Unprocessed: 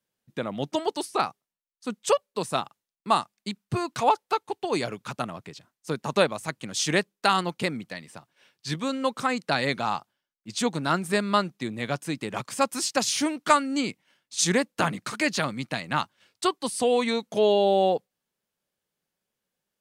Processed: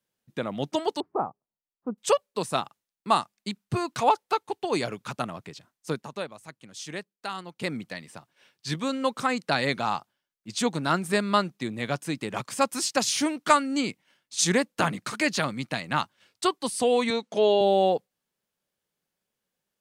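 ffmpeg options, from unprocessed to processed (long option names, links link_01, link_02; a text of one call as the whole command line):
ffmpeg -i in.wav -filter_complex "[0:a]asettb=1/sr,asplit=3[link_01][link_02][link_03];[link_01]atrim=end=1.004[link_04];[link_02]atrim=start=1:end=1.98,asetpts=PTS-STARTPTS,afade=type=in:duration=0.004:curve=qsin,afade=type=out:start_time=0.976:duration=0.004:curve=qsin,lowpass=frequency=1000:width=0.5412,lowpass=frequency=1000:width=1.3066[link_05];[link_03]atrim=start=1.976[link_06];[link_04][link_05]acrossfade=duration=0.004:curve1=hsin:curve2=qsin[link_07];[link_07][link_06]acrossfade=duration=0.004:curve1=qsin:curve2=hsin,asettb=1/sr,asplit=3[link_08][link_09][link_10];[link_08]atrim=end=17.104[link_11];[link_09]atrim=start=17.1:end=17.61,asetpts=PTS-STARTPTS,afade=type=in:duration=0.004:curve=qsin,afade=type=out:start_time=0.506:duration=0.004:curve=qsin,highpass=210,lowpass=7400[link_12];[link_10]atrim=start=17.606[link_13];[link_11][link_12]acrossfade=duration=0.004:curve1=hsin:curve2=qsin[link_14];[link_14][link_13]acrossfade=duration=0.004:curve1=qsin:curve2=hsin,asplit=3[link_15][link_16][link_17];[link_15]atrim=end=6.1,asetpts=PTS-STARTPTS,afade=type=out:start_time=5.92:duration=0.18:silence=0.237137[link_18];[link_16]atrim=start=6.1:end=7.55,asetpts=PTS-STARTPTS,volume=-12.5dB[link_19];[link_17]atrim=start=7.55,asetpts=PTS-STARTPTS,afade=type=in:duration=0.18:silence=0.237137[link_20];[link_18][link_19][link_20]concat=n=3:v=0:a=1" out.wav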